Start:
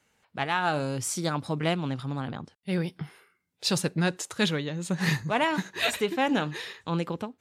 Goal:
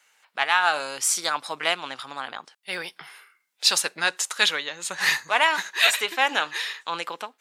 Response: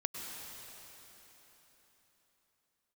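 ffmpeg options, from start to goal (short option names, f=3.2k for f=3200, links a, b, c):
-af "highpass=1k,volume=9dB"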